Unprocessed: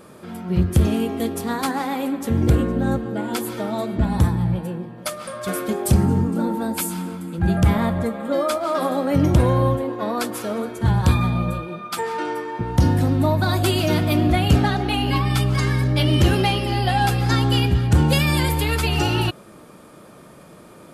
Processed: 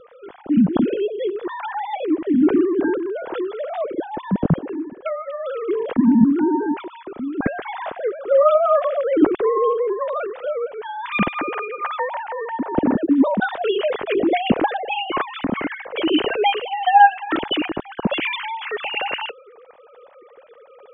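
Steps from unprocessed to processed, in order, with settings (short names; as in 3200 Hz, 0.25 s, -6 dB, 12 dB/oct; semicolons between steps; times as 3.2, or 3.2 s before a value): sine-wave speech; low shelf 380 Hz +11.5 dB; gain -5 dB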